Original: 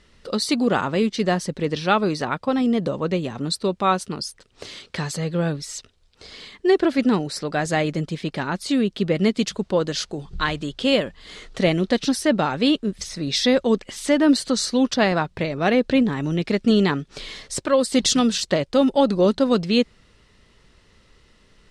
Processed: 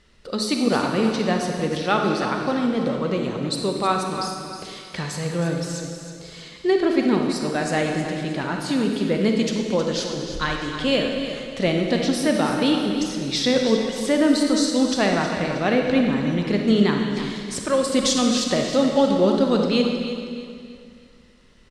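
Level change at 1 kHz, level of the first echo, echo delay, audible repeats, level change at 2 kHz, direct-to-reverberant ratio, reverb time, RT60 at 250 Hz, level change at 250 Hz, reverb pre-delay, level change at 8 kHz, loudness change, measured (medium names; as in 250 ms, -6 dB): -0.5 dB, -10.5 dB, 316 ms, 3, 0.0 dB, 1.5 dB, 2.3 s, 2.4 s, 0.0 dB, 32 ms, -0.5 dB, -0.5 dB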